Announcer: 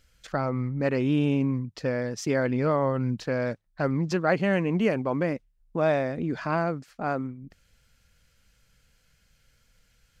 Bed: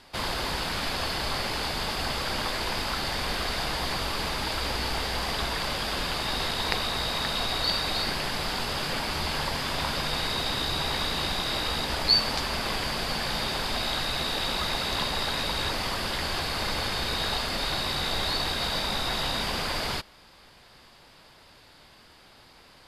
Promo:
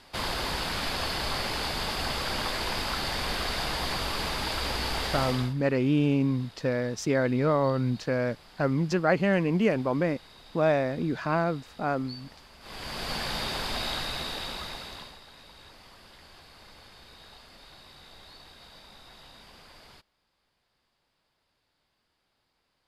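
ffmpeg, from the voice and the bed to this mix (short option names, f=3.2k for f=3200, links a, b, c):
-filter_complex "[0:a]adelay=4800,volume=0dB[a];[1:a]volume=20dB,afade=t=out:st=5.21:d=0.33:silence=0.0749894,afade=t=in:st=12.6:d=0.54:silence=0.0891251,afade=t=out:st=13.86:d=1.34:silence=0.1[b];[a][b]amix=inputs=2:normalize=0"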